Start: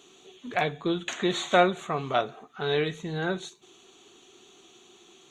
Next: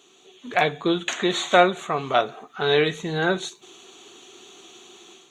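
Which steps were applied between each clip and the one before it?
low shelf 200 Hz -8 dB; AGC gain up to 8.5 dB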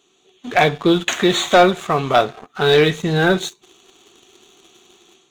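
low shelf 120 Hz +10.5 dB; sample leveller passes 2; gain -1 dB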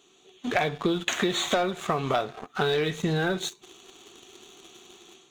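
compressor 12:1, threshold -22 dBFS, peak gain reduction 15.5 dB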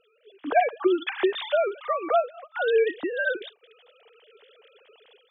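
sine-wave speech; gain +2 dB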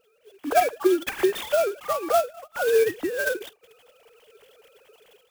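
in parallel at -11 dB: sample-rate reducer 2000 Hz, jitter 0%; on the sum: clock jitter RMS 0.033 ms

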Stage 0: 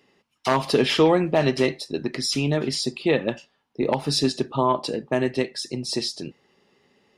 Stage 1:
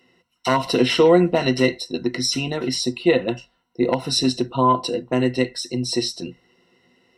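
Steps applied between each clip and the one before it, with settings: ripple EQ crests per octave 2, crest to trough 14 dB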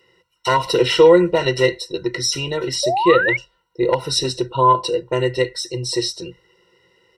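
comb 2.1 ms, depth 100%; painted sound rise, 2.83–3.37, 550–2300 Hz -18 dBFS; gain -1 dB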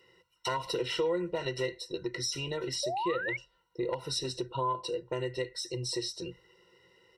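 compressor 2.5:1, threshold -30 dBFS, peak gain reduction 15 dB; gain -5 dB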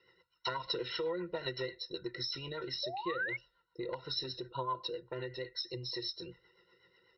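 rotary speaker horn 8 Hz; rippled Chebyshev low-pass 5500 Hz, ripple 9 dB; gain +3.5 dB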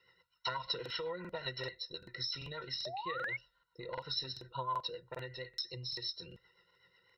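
bell 340 Hz -11 dB 0.82 oct; crackling interface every 0.39 s, samples 2048, repeat, from 0.81

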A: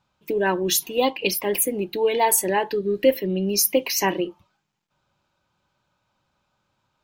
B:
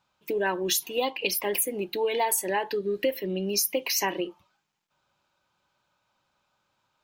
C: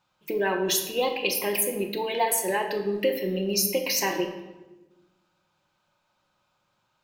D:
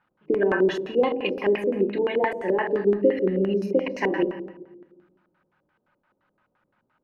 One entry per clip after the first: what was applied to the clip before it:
low shelf 310 Hz -9.5 dB; compressor 4:1, threshold -23 dBFS, peak gain reduction 8 dB
shoebox room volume 590 m³, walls mixed, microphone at 0.92 m
bit-crush 12-bit; LFO low-pass square 5.8 Hz 440–1700 Hz; small resonant body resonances 250/2900 Hz, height 8 dB, ringing for 35 ms

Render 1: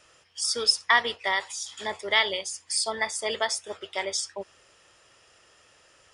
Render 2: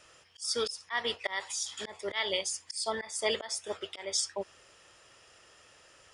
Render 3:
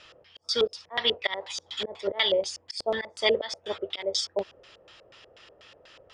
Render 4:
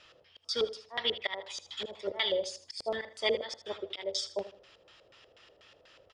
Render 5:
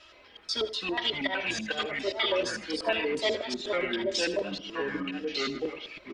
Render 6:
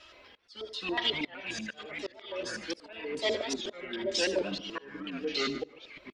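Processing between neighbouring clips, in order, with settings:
auto swell 0.235 s
LFO low-pass square 4.1 Hz 550–3800 Hz; gain +4 dB
feedback echo 79 ms, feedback 31%, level -14.5 dB; gain -6 dB
comb 3.1 ms, depth 95%; in parallel at -2.5 dB: limiter -24 dBFS, peak gain reduction 9.5 dB; on the sum: echoes that change speed 0.121 s, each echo -4 st, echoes 3; gain -3.5 dB
auto swell 0.51 s; echo 0.147 s -23.5 dB; record warp 78 rpm, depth 160 cents

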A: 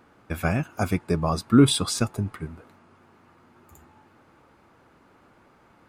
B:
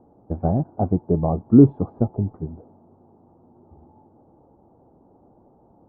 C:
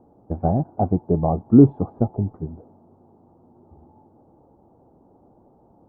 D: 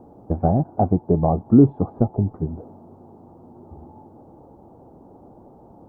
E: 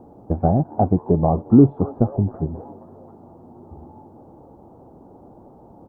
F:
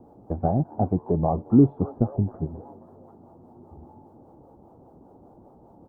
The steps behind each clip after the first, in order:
Chebyshev low-pass 820 Hz, order 4; gain +4.5 dB
dynamic EQ 770 Hz, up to +4 dB, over -41 dBFS, Q 3.1
compressor 1.5:1, threshold -33 dBFS, peak gain reduction 9.5 dB; gain +8 dB
frequency-shifting echo 0.267 s, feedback 57%, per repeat +140 Hz, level -23 dB; gain +1 dB
harmonic tremolo 5 Hz, depth 50%, crossover 410 Hz; gain -3 dB

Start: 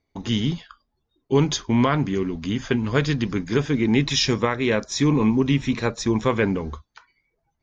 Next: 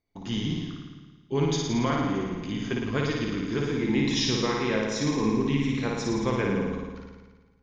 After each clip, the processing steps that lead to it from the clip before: flutter echo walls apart 9.6 m, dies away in 1.3 s; on a send at -10 dB: reverb RT60 0.90 s, pre-delay 6 ms; on the sum: gain -8.5 dB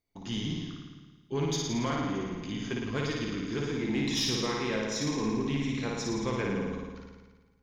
high shelf 4000 Hz +6 dB; soft clip -17 dBFS, distortion -20 dB; gain -4 dB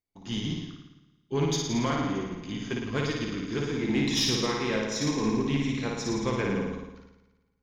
upward expander 1.5:1, over -52 dBFS; gain +4.5 dB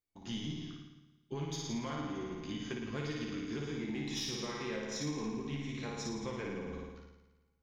compressor, threshold -33 dBFS, peak gain reduction 10.5 dB; resonator 75 Hz, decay 0.2 s, harmonics all, mix 80%; gain +2 dB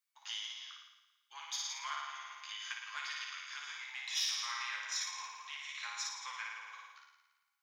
steep high-pass 1000 Hz 36 dB/oct; gain +5 dB

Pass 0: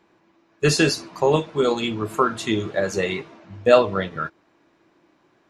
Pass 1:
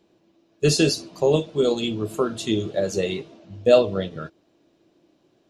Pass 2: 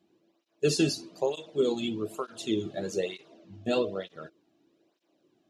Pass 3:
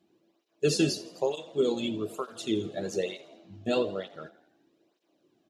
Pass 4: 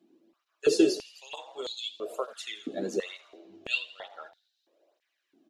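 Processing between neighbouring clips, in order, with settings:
band shelf 1400 Hz -11 dB
tape flanging out of phase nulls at 1.1 Hz, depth 2.2 ms; gain -4.5 dB
frequency-shifting echo 83 ms, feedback 55%, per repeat +48 Hz, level -18 dB
stepped high-pass 3 Hz 260–4000 Hz; gain -2.5 dB

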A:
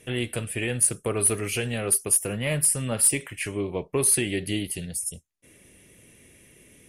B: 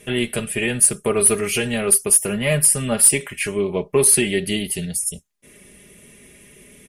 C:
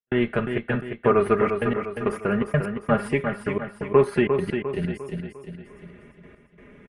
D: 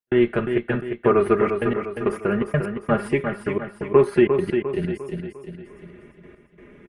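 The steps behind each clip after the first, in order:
comb 4.9 ms, depth 60%; gain +5.5 dB
step gate ".xxxx.x." 130 bpm -60 dB; synth low-pass 1400 Hz, resonance Q 2.1; on a send: feedback echo 0.351 s, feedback 46%, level -6.5 dB
bell 350 Hz +9 dB 0.23 oct

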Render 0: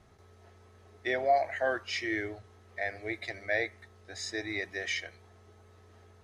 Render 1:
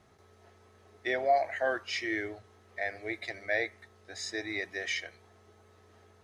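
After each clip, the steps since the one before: low shelf 79 Hz -12 dB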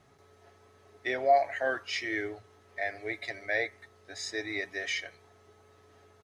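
comb 7.1 ms, depth 41%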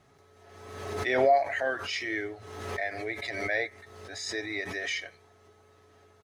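backwards sustainer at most 42 dB/s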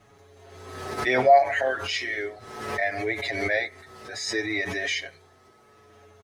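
endless flanger 6.7 ms -0.66 Hz; gain +8 dB

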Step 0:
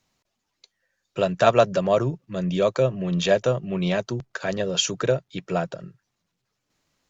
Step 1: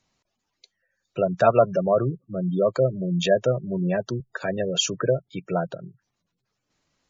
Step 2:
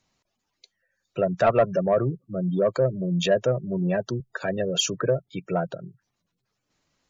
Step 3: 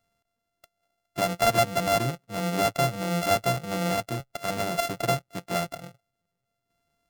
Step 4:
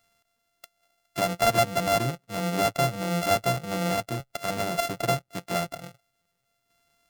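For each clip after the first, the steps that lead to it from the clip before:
spectral gate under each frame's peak -20 dB strong
soft clip -10.5 dBFS, distortion -18 dB
sample sorter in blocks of 64 samples; gain -2.5 dB
mismatched tape noise reduction encoder only

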